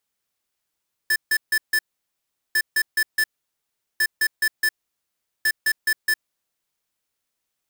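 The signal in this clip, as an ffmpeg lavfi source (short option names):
-f lavfi -i "aevalsrc='0.112*(2*lt(mod(1750*t,1),0.5)-1)*clip(min(mod(mod(t,1.45),0.21),0.06-mod(mod(t,1.45),0.21))/0.005,0,1)*lt(mod(t,1.45),0.84)':d=5.8:s=44100"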